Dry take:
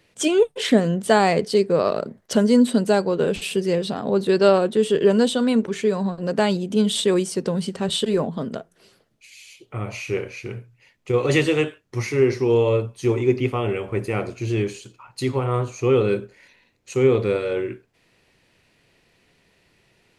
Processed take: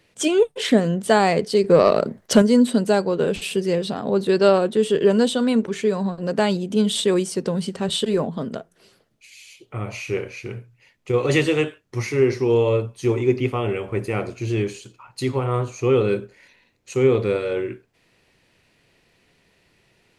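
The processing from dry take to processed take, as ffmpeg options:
ffmpeg -i in.wav -filter_complex "[0:a]asettb=1/sr,asplit=3[link_01][link_02][link_03];[link_01]atrim=end=1.644[link_04];[link_02]atrim=start=1.64:end=2.42,asetpts=PTS-STARTPTS,afade=type=in:duration=0.004:curve=qsin,afade=type=out:start_time=0.776:duration=0.004:curve=qsin,acontrast=56[link_05];[link_03]atrim=start=2.416[link_06];[link_04][link_05]acrossfade=duration=0.004:curve1=hsin:curve2=qsin[link_07];[link_07][link_06]acrossfade=duration=0.004:curve1=qsin:curve2=hsin" out.wav

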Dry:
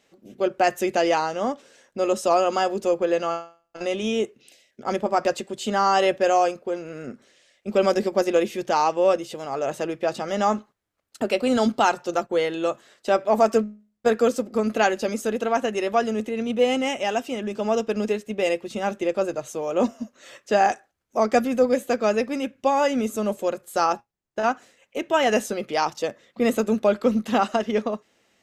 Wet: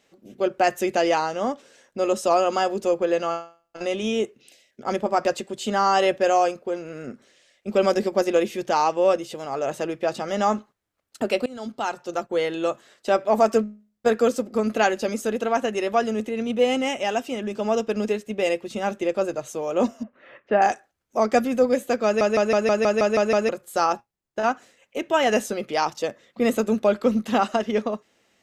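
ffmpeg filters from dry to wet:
ffmpeg -i in.wav -filter_complex "[0:a]asettb=1/sr,asplit=3[link_01][link_02][link_03];[link_01]atrim=end=20.034[link_04];[link_02]atrim=start=20.03:end=20.62,asetpts=PTS-STARTPTS,afade=type=in:duration=0.004:curve=qsin,afade=type=out:start_time=0.586:duration=0.004:curve=qsin,lowpass=frequency=2400:width=0.5412,lowpass=frequency=2400:width=1.3066[link_05];[link_03]atrim=start=20.616[link_06];[link_04][link_05]acrossfade=duration=0.004:curve1=hsin:curve2=qsin[link_07];[link_07][link_06]acrossfade=duration=0.004:curve1=qsin:curve2=hsin,asplit=11[link_08][link_09][link_10][link_11][link_12][link_13][link_14][link_15][link_16][link_17][link_18];[link_08]atrim=end=11.46,asetpts=PTS-STARTPTS,afade=type=out:start_time=11.456:duration=0.004:curve=hsin:silence=0.0707946[link_19];[link_09]atrim=start=11.46:end=22.212,asetpts=PTS-STARTPTS,afade=type=in:duration=1.06:silence=0.0707946[link_20];[link_10]atrim=start=22.048:end=22.212[link_21];[link_11]atrim=start=22.048:end=22.212[link_22];[link_12]atrim=start=22.048:end=22.212[link_23];[link_13]atrim=start=22.048:end=22.212[link_24];[link_14]atrim=start=22.048:end=22.212[link_25];[link_15]atrim=start=22.048:end=22.212[link_26];[link_16]atrim=start=22.048:end=22.212[link_27];[link_17]atrim=start=22.048:end=22.212[link_28];[link_18]atrim=start=23.488[link_29];[link_19][link_20]concat=n=2:v=0:a=1[link_30];[link_30][link_21]acrossfade=duration=0.004:curve1=hsin:curve2=hsin[link_31];[link_31][link_22]acrossfade=duration=0.004:curve1=hsin:curve2=hsin[link_32];[link_32][link_23]acrossfade=duration=0.004:curve1=hsin:curve2=hsin[link_33];[link_33][link_24]acrossfade=duration=0.004:curve1=hsin:curve2=hsin[link_34];[link_34][link_25]acrossfade=duration=0.004:curve1=hsin:curve2=hsin[link_35];[link_35][link_26]acrossfade=duration=0.004:curve1=hsin:curve2=hsin[link_36];[link_36][link_27]acrossfade=duration=0.004:curve1=hsin:curve2=hsin[link_37];[link_37][link_28]acrossfade=duration=0.004:curve1=hsin:curve2=hsin[link_38];[link_38][link_29]acrossfade=duration=0.004:curve1=hsin:curve2=hsin" out.wav

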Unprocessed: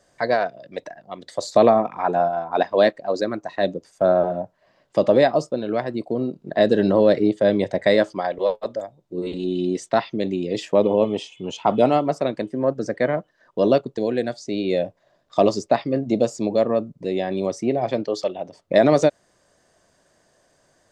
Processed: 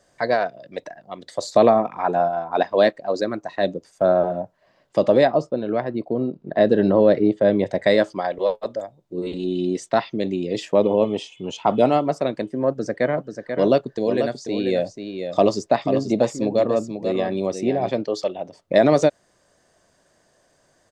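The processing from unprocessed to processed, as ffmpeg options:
ffmpeg -i in.wav -filter_complex "[0:a]asettb=1/sr,asplit=3[link_01][link_02][link_03];[link_01]atrim=end=5.254[link_04];[link_02]atrim=start=5.25:end=7.66,asetpts=PTS-STARTPTS,afade=type=in:duration=0.004:curve=qsin,afade=type=out:start_time=2.406:duration=0.004:curve=qsin,aemphasis=mode=reproduction:type=75fm[link_05];[link_03]atrim=start=7.656[link_06];[link_04][link_05]acrossfade=duration=0.004:curve1=hsin:curve2=qsin[link_07];[link_07][link_06]acrossfade=duration=0.004:curve1=qsin:curve2=hsin,asplit=3[link_08][link_09][link_10];[link_08]afade=type=out:start_time=13.17:duration=0.02[link_11];[link_09]aecho=1:1:488:0.422,afade=type=in:start_time=13.17:duration=0.02,afade=type=out:start_time=17.88:duration=0.02[link_12];[link_10]afade=type=in:start_time=17.88:duration=0.02[link_13];[link_11][link_12][link_13]amix=inputs=3:normalize=0" out.wav

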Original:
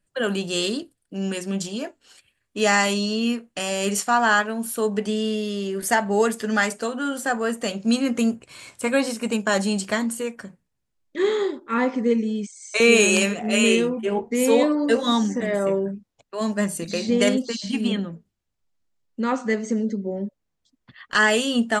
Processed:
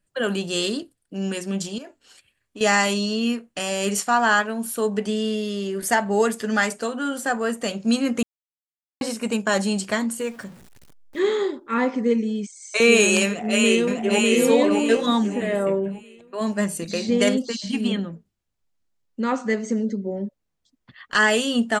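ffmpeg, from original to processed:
ffmpeg -i in.wav -filter_complex "[0:a]asettb=1/sr,asplit=3[link_01][link_02][link_03];[link_01]atrim=end=1.784[link_04];[link_02]atrim=start=1.78:end=2.61,asetpts=PTS-STARTPTS,afade=type=in:duration=0.004:curve=qsin,afade=type=out:start_time=0.826:duration=0.004:curve=qsin,acompressor=threshold=-36dB:ratio=5:attack=3.2:release=140:knee=1:detection=peak[link_05];[link_03]atrim=start=2.606[link_06];[link_04][link_05]acrossfade=duration=0.004:curve1=hsin:curve2=qsin[link_07];[link_07][link_06]acrossfade=duration=0.004:curve1=qsin:curve2=hsin,asettb=1/sr,asplit=3[link_08][link_09][link_10];[link_08]atrim=end=10.204[link_11];[link_09]atrim=start=10.2:end=11.2,asetpts=PTS-STARTPTS,afade=type=in:duration=0.004:curve=qsin,afade=type=out:start_time=0.996:duration=0.004:curve=qsin,aeval=exprs='val(0)+0.5*0.00794*sgn(val(0))':channel_layout=same[link_12];[link_10]atrim=start=11.196[link_13];[link_11][link_12]acrossfade=duration=0.004:curve1=hsin:curve2=qsin[link_14];[link_14][link_13]acrossfade=duration=0.004:curve1=qsin:curve2=hsin,asplit=2[link_15][link_16];[link_16]afade=type=in:start_time=13.27:duration=0.01,afade=type=out:start_time=14.22:duration=0.01,aecho=0:1:600|1200|1800|2400|3000:0.841395|0.294488|0.103071|0.0360748|0.0126262[link_17];[link_15][link_17]amix=inputs=2:normalize=0,asettb=1/sr,asplit=3[link_18][link_19][link_20];[link_18]atrim=end=15.064[link_21];[link_19]atrim=start=15.06:end=16.47,asetpts=PTS-STARTPTS,afade=type=in:duration=0.004:curve=qsin,afade=type=out:start_time=1.406:duration=0.004:curve=qsin,equalizer=frequency=5700:width_type=o:width=0.52:gain=-12.5[link_22];[link_20]atrim=start=16.466[link_23];[link_21][link_22]acrossfade=duration=0.004:curve1=hsin:curve2=qsin[link_24];[link_24][link_23]acrossfade=duration=0.004:curve1=qsin:curve2=hsin,asplit=3[link_25][link_26][link_27];[link_25]atrim=end=8.23,asetpts=PTS-STARTPTS,afade=type=out:start_time=8.226:duration=0.004:curve=hsin[link_28];[link_26]atrim=start=8.23:end=9.01,asetpts=PTS-STARTPTS,volume=0[link_29];[link_27]atrim=start=9.01,asetpts=PTS-STARTPTS,afade=type=in:duration=0.004:curve=hsin[link_30];[link_28][link_29][link_30]concat=n=3:v=0:a=1" out.wav

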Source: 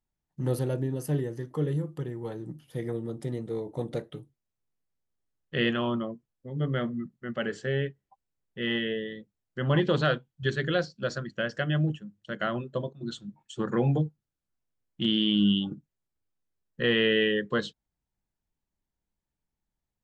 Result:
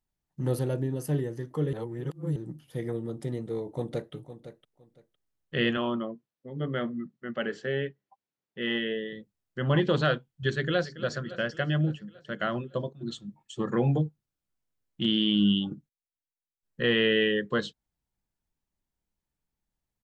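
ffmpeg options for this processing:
ffmpeg -i in.wav -filter_complex "[0:a]asplit=2[link_01][link_02];[link_02]afade=type=in:start_time=3.71:duration=0.01,afade=type=out:start_time=4.13:duration=0.01,aecho=0:1:510|1020:0.237137|0.0474275[link_03];[link_01][link_03]amix=inputs=2:normalize=0,asettb=1/sr,asplit=3[link_04][link_05][link_06];[link_04]atrim=end=5.774[link_07];[link_05]atrim=start=5.77:end=9.13,asetpts=PTS-STARTPTS,afade=type=in:duration=0.004:curve=qsin,afade=type=out:start_time=3.356:duration=0.004:curve=qsin,highpass=170,lowpass=5300[link_08];[link_06]atrim=start=9.126[link_09];[link_07][link_08]acrossfade=duration=0.004:curve1=hsin:curve2=qsin[link_10];[link_10][link_09]acrossfade=duration=0.004:curve1=qsin:curve2=hsin,asplit=2[link_11][link_12];[link_12]afade=type=in:start_time=10.52:duration=0.01,afade=type=out:start_time=11.07:duration=0.01,aecho=0:1:280|560|840|1120|1400|1680|1960:0.177828|0.115588|0.0751323|0.048836|0.0317434|0.0206332|0.0134116[link_13];[link_11][link_13]amix=inputs=2:normalize=0,asettb=1/sr,asplit=3[link_14][link_15][link_16];[link_14]atrim=end=13.084[link_17];[link_15]atrim=start=13.08:end=13.72,asetpts=PTS-STARTPTS,afade=type=in:duration=0.004:curve=qsin,afade=type=out:start_time=0.636:duration=0.004:curve=qsin,asuperstop=centerf=1500:order=20:qfactor=6.5[link_18];[link_16]atrim=start=13.716[link_19];[link_17][link_18]acrossfade=duration=0.004:curve1=hsin:curve2=qsin[link_20];[link_20][link_19]acrossfade=duration=0.004:curve1=qsin:curve2=hsin,asplit=5[link_21][link_22][link_23][link_24][link_25];[link_21]atrim=end=1.732[link_26];[link_22]atrim=start=1.728:end=2.362,asetpts=PTS-STARTPTS,areverse[link_27];[link_23]atrim=start=2.358:end=15.89,asetpts=PTS-STARTPTS,afade=type=out:start_time=13.352:duration=0.18:curve=log:silence=0.11885[link_28];[link_24]atrim=start=15.89:end=16.63,asetpts=PTS-STARTPTS,volume=-18.5dB[link_29];[link_25]atrim=start=16.63,asetpts=PTS-STARTPTS,afade=type=in:duration=0.18:curve=log:silence=0.11885[link_30];[link_26][link_27]acrossfade=duration=0.004:curve1=hsin:curve2=hsin[link_31];[link_28][link_29][link_30]concat=n=3:v=0:a=1[link_32];[link_31][link_32]acrossfade=duration=0.004:curve1=hsin:curve2=hsin" out.wav

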